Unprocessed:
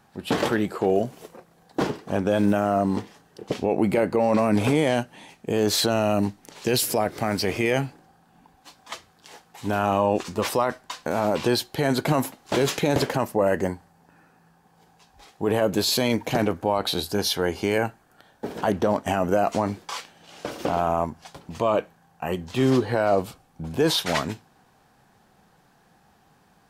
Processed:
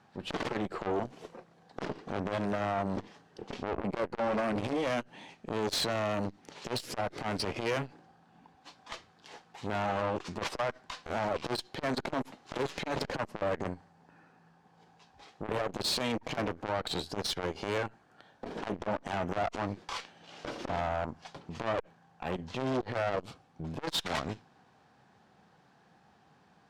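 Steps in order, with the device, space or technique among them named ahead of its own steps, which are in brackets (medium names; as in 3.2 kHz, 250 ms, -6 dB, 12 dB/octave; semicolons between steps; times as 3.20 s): valve radio (band-pass 82–5300 Hz; valve stage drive 24 dB, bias 0.65; transformer saturation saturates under 510 Hz)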